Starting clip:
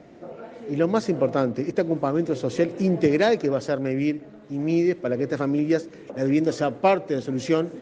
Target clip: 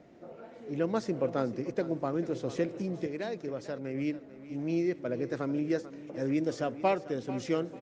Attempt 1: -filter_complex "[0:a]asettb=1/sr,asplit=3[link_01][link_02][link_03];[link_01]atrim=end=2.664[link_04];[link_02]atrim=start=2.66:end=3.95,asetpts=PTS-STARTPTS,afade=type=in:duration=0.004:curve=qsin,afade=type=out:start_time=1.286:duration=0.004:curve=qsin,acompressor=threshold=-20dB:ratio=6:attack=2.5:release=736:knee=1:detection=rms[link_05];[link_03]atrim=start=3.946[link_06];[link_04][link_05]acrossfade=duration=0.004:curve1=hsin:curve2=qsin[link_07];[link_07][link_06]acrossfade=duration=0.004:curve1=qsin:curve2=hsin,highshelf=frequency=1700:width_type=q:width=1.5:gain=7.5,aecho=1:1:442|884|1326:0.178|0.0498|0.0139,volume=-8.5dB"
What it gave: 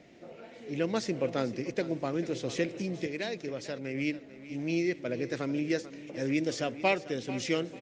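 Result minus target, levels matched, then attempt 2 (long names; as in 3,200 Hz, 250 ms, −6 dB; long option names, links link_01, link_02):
4,000 Hz band +8.5 dB
-filter_complex "[0:a]asettb=1/sr,asplit=3[link_01][link_02][link_03];[link_01]atrim=end=2.664[link_04];[link_02]atrim=start=2.66:end=3.95,asetpts=PTS-STARTPTS,afade=type=in:duration=0.004:curve=qsin,afade=type=out:start_time=1.286:duration=0.004:curve=qsin,acompressor=threshold=-20dB:ratio=6:attack=2.5:release=736:knee=1:detection=rms[link_05];[link_03]atrim=start=3.946[link_06];[link_04][link_05]acrossfade=duration=0.004:curve1=hsin:curve2=qsin[link_07];[link_07][link_06]acrossfade=duration=0.004:curve1=qsin:curve2=hsin,aecho=1:1:442|884|1326:0.178|0.0498|0.0139,volume=-8.5dB"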